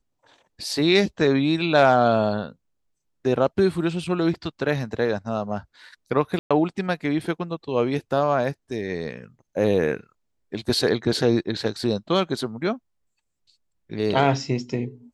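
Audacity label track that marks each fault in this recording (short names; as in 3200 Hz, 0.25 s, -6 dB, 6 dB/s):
6.390000	6.510000	gap 0.116 s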